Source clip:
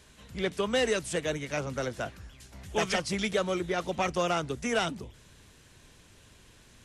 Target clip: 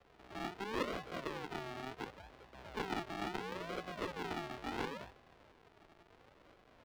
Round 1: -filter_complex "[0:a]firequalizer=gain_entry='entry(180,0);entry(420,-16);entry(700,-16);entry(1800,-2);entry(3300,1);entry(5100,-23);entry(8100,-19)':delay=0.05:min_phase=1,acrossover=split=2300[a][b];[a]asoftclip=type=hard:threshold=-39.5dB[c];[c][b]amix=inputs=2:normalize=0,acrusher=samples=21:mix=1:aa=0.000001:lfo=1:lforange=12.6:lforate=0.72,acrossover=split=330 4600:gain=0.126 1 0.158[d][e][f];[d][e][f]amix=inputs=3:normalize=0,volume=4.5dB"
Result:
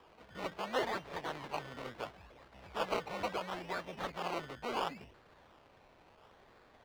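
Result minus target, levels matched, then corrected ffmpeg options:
decimation with a swept rate: distortion -6 dB
-filter_complex "[0:a]firequalizer=gain_entry='entry(180,0);entry(420,-16);entry(700,-16);entry(1800,-2);entry(3300,1);entry(5100,-23);entry(8100,-19)':delay=0.05:min_phase=1,acrossover=split=2300[a][b];[a]asoftclip=type=hard:threshold=-39.5dB[c];[c][b]amix=inputs=2:normalize=0,acrusher=samples=68:mix=1:aa=0.000001:lfo=1:lforange=40.8:lforate=0.72,acrossover=split=330 4600:gain=0.126 1 0.158[d][e][f];[d][e][f]amix=inputs=3:normalize=0,volume=4.5dB"

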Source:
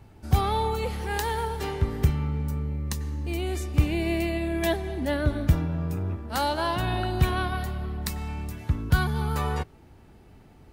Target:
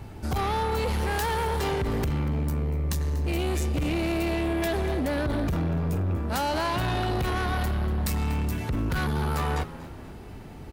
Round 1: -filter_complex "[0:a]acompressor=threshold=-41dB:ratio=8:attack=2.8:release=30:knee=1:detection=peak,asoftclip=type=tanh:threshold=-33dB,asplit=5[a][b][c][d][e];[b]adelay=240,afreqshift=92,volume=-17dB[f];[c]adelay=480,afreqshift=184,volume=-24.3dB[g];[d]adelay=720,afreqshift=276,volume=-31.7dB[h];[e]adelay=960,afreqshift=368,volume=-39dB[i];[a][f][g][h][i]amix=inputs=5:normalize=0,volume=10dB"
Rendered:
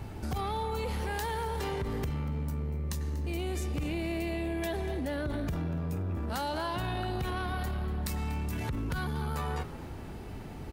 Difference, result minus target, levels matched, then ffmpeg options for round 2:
compressor: peak gain reduction +10.5 dB
-filter_complex "[0:a]acompressor=threshold=-29dB:ratio=8:attack=2.8:release=30:knee=1:detection=peak,asoftclip=type=tanh:threshold=-33dB,asplit=5[a][b][c][d][e];[b]adelay=240,afreqshift=92,volume=-17dB[f];[c]adelay=480,afreqshift=184,volume=-24.3dB[g];[d]adelay=720,afreqshift=276,volume=-31.7dB[h];[e]adelay=960,afreqshift=368,volume=-39dB[i];[a][f][g][h][i]amix=inputs=5:normalize=0,volume=10dB"

